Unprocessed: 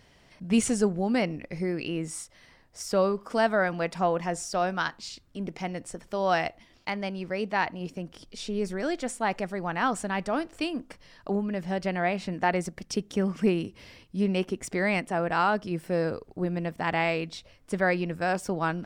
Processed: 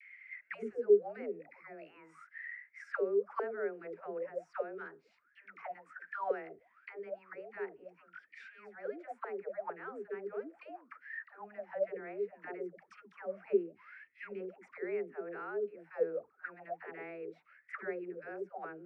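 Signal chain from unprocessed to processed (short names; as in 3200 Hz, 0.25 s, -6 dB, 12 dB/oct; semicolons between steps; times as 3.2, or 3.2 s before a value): band shelf 1800 Hz +15.5 dB 1.2 oct; dispersion lows, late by 0.118 s, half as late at 490 Hz; auto-wah 410–2300 Hz, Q 21, down, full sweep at -20 dBFS; gain +5 dB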